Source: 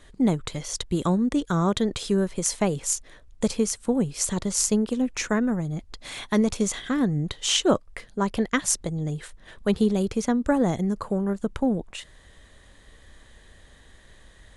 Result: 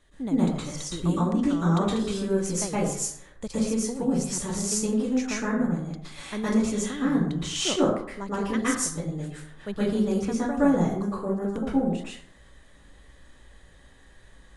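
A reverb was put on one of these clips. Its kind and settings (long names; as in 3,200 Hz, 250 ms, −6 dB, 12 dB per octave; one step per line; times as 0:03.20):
dense smooth reverb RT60 0.66 s, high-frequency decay 0.5×, pre-delay 105 ms, DRR −9.5 dB
level −11.5 dB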